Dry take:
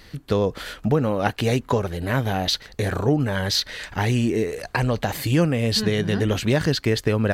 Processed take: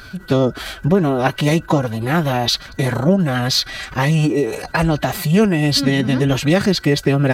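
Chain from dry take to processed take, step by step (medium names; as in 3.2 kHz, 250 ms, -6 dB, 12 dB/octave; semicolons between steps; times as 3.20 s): whistle 1.5 kHz -42 dBFS; formant-preserving pitch shift +4.5 st; trim +5.5 dB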